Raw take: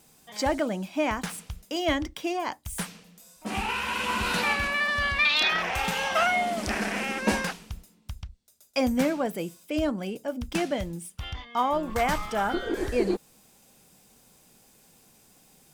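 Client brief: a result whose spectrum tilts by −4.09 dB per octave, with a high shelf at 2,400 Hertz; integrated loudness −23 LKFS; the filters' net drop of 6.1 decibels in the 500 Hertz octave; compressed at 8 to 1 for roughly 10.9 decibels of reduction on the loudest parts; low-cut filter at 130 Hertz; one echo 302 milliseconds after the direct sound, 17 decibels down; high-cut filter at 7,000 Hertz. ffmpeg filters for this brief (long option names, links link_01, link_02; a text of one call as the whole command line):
ffmpeg -i in.wav -af "highpass=130,lowpass=7000,equalizer=frequency=500:width_type=o:gain=-8,highshelf=frequency=2400:gain=-4,acompressor=threshold=-33dB:ratio=8,aecho=1:1:302:0.141,volume=14dB" out.wav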